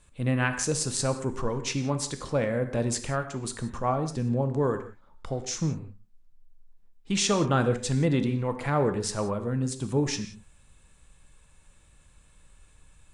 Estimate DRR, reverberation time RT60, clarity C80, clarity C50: 8.0 dB, non-exponential decay, 12.0 dB, 10.5 dB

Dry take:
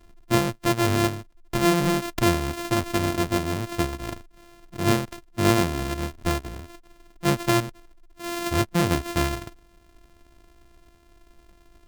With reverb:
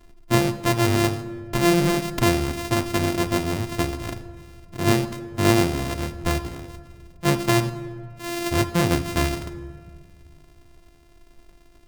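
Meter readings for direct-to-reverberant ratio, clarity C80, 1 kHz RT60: 9.0 dB, 14.5 dB, 1.6 s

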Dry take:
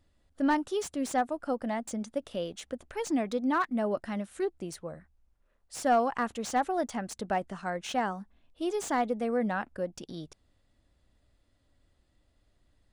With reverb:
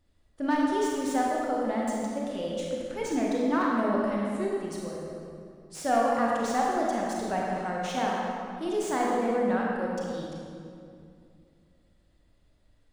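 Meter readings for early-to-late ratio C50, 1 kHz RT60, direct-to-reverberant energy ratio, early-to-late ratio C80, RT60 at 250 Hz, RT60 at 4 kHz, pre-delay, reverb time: −2.0 dB, 2.3 s, −4.0 dB, −0.5 dB, 2.8 s, 1.6 s, 29 ms, 2.5 s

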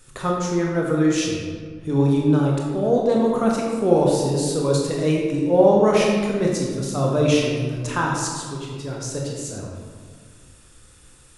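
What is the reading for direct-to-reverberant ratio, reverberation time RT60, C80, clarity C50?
−2.5 dB, 1.8 s, 3.0 dB, 0.5 dB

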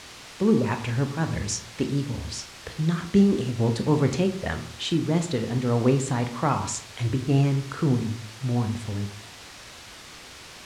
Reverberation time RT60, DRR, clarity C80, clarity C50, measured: 0.50 s, 6.5 dB, 14.5 dB, 11.0 dB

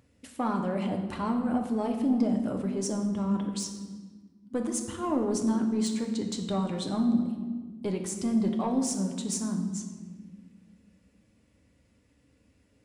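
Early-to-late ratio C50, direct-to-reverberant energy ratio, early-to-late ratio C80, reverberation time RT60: 7.0 dB, 2.5 dB, 8.5 dB, 1.5 s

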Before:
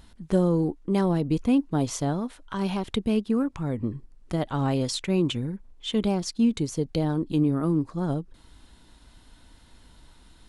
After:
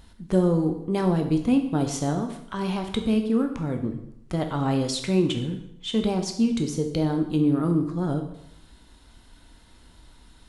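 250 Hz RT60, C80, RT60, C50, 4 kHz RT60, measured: 0.75 s, 11.0 dB, 0.75 s, 8.5 dB, 0.70 s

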